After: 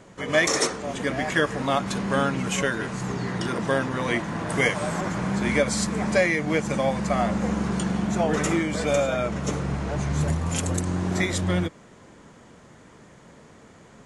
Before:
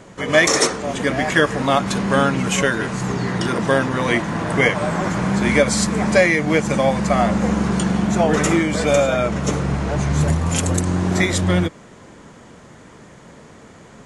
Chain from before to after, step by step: 4.49–5.01 high shelf 6100 Hz +12 dB; gain -6.5 dB

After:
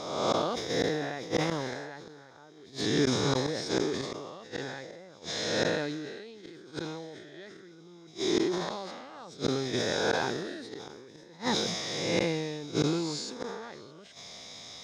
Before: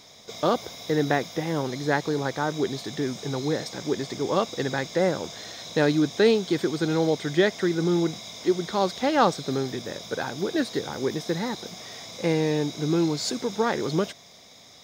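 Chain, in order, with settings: spectral swells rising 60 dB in 1.16 s; high shelf 3700 Hz +10 dB; flipped gate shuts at -14 dBFS, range -30 dB; requantised 12-bit, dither none; air absorption 90 m; sustainer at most 31 dB/s

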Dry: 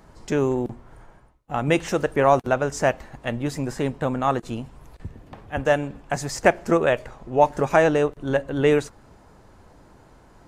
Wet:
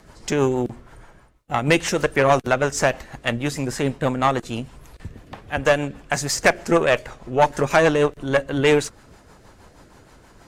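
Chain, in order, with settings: tilt shelf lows -4 dB, about 1100 Hz; rotary speaker horn 6.3 Hz; tube stage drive 15 dB, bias 0.45; gain +8.5 dB

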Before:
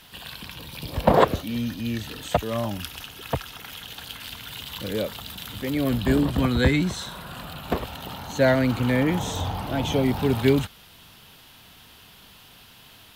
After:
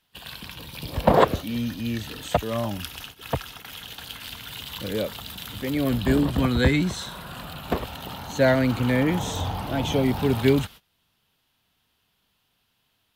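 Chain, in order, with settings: gate -40 dBFS, range -21 dB

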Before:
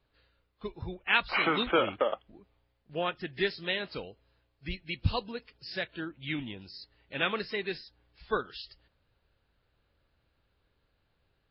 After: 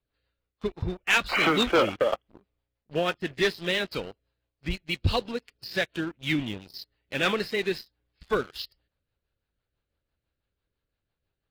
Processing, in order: rotary speaker horn 6 Hz; sample leveller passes 3; gain -2 dB

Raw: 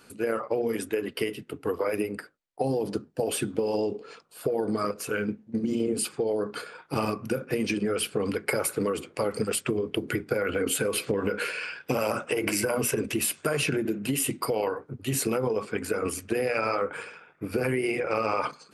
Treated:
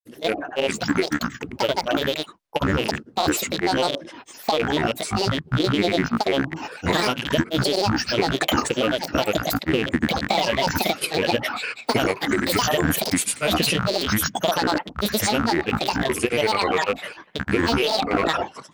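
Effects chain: rattling part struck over -38 dBFS, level -19 dBFS; grains 0.1 s, grains 20/s, pitch spread up and down by 12 st; gain +6.5 dB

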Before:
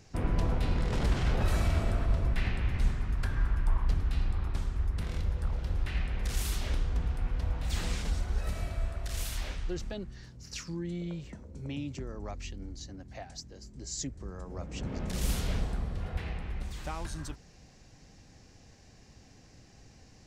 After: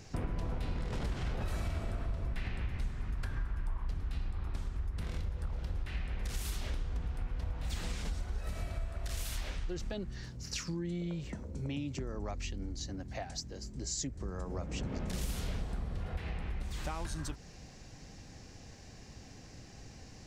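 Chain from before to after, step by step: compressor 4:1, threshold -39 dBFS, peak gain reduction 15.5 dB; gain +4.5 dB

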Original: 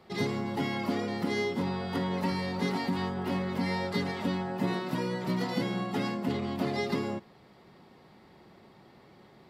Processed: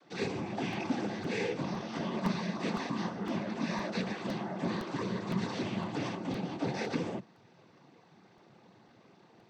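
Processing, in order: noise vocoder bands 16; crackling interface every 0.51 s, samples 64, repeat, from 0.73; gain -3 dB

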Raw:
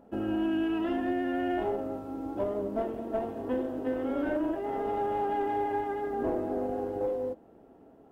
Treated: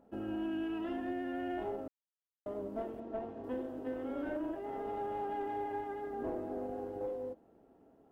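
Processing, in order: 1.88–2.46 mute; 3–3.44 air absorption 99 m; gain -8 dB

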